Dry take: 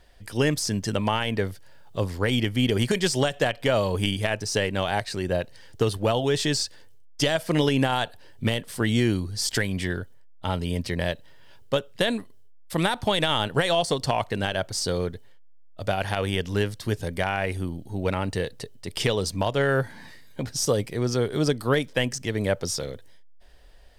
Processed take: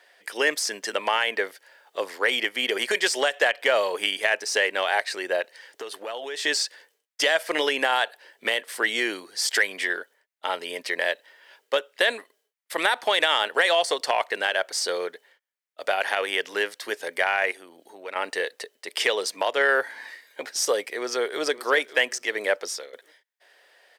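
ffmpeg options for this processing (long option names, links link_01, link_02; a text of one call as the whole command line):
ffmpeg -i in.wav -filter_complex "[0:a]asettb=1/sr,asplit=3[link_01][link_02][link_03];[link_01]atrim=end=5.414[link_04];[link_02]atrim=start=5.41:end=6.45,asetpts=PTS-STARTPTS,afade=type=in:duration=0.004:curve=qsin,afade=type=out:start_time=1.036:duration=0.004:curve=qsin,acompressor=threshold=-28dB:ratio=12:attack=3.2:release=140:knee=1:detection=peak[link_05];[link_03]atrim=start=6.446[link_06];[link_04][link_05]acrossfade=duration=0.004:curve1=hsin:curve2=qsin[link_07];[link_07][link_06]acrossfade=duration=0.004:curve1=qsin:curve2=hsin,asettb=1/sr,asplit=3[link_08][link_09][link_10];[link_08]atrim=end=17.514[link_11];[link_09]atrim=start=17.51:end=18.16,asetpts=PTS-STARTPTS,afade=type=in:duration=0.004:curve=qsin,afade=type=out:start_time=0.646:duration=0.004:curve=qsin,acompressor=threshold=-35dB:ratio=2.5:attack=3.2:release=140:knee=1:detection=peak[link_12];[link_10]atrim=start=18.156[link_13];[link_11][link_12]acrossfade=duration=0.004:curve1=hsin:curve2=qsin[link_14];[link_14][link_13]acrossfade=duration=0.004:curve1=qsin:curve2=hsin,asplit=2[link_15][link_16];[link_16]afade=type=in:start_time=20.86:duration=0.01,afade=type=out:start_time=21.44:duration=0.01,aecho=0:1:560|1120|1680:0.177828|0.0533484|0.0160045[link_17];[link_15][link_17]amix=inputs=2:normalize=0,asplit=2[link_18][link_19];[link_18]atrim=end=22.93,asetpts=PTS-STARTPTS,afade=type=out:start_time=22.53:duration=0.4:silence=0.211349[link_20];[link_19]atrim=start=22.93,asetpts=PTS-STARTPTS,afade=type=in:duration=0.004:curve=hsin:silence=0.211349[link_21];[link_20][link_21]concat=n=2:v=0:a=1,highpass=frequency=410:width=0.5412,highpass=frequency=410:width=1.3066,equalizer=frequency=1900:width=1.5:gain=8,acontrast=54,volume=-5dB" out.wav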